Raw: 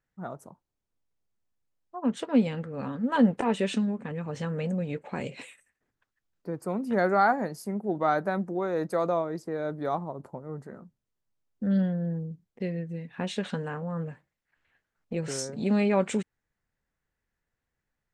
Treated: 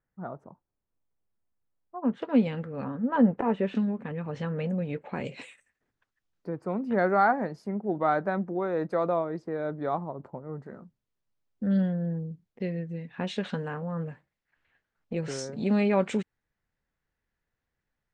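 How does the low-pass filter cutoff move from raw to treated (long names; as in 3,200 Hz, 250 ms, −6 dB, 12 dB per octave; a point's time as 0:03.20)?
1,700 Hz
from 0:02.22 3,900 Hz
from 0:02.84 1,600 Hz
from 0:03.75 3,600 Hz
from 0:05.25 6,900 Hz
from 0:06.49 3,100 Hz
from 0:10.66 5,400 Hz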